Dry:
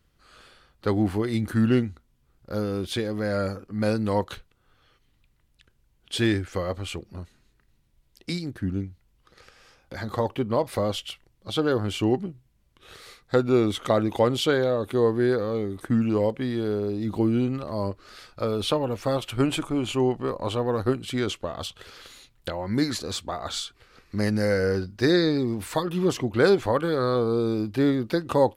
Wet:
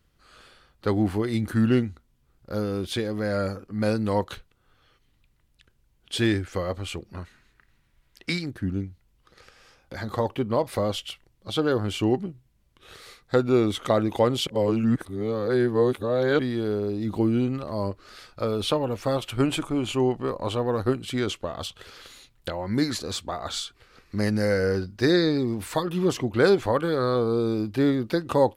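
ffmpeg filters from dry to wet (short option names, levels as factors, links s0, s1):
-filter_complex "[0:a]asettb=1/sr,asplit=3[s0][s1][s2];[s0]atrim=end=7.134[s3];[s1]atrim=start=7.13:end=8.46,asetpts=PTS-STARTPTS,afade=t=in:d=0.004:c=qsin,afade=t=out:st=1.326:d=0.004:c=qsin,equalizer=f=1700:w=0.77:g=11[s4];[s2]atrim=start=8.456[s5];[s3][s4]acrossfade=d=0.004:c1=hsin:c2=qsin[s6];[s6][s5]acrossfade=d=0.004:c1=qsin:c2=hsin,asplit=3[s7][s8][s9];[s7]atrim=end=14.472[s10];[s8]atrim=start=14.468:end=16.392,asetpts=PTS-STARTPTS,areverse[s11];[s9]atrim=start=16.388[s12];[s10][s11]acrossfade=d=0.004:c1=hsin:c2=hsin[s13];[s13][s12]acrossfade=d=0.004:c1=hsin:c2=hsin"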